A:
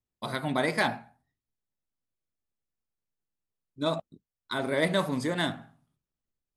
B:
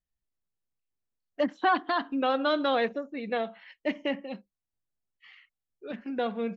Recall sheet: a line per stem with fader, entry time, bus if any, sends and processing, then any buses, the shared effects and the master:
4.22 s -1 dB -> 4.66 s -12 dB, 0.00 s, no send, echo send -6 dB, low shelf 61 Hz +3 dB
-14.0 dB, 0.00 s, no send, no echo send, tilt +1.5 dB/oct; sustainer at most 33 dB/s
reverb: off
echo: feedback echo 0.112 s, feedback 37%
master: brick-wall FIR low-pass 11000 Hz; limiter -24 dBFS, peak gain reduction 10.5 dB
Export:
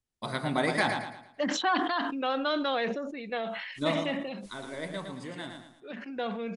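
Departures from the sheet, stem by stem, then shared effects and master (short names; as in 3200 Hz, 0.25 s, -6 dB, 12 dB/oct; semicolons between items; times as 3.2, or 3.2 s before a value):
stem B -14.0 dB -> -3.0 dB; master: missing limiter -24 dBFS, peak gain reduction 10.5 dB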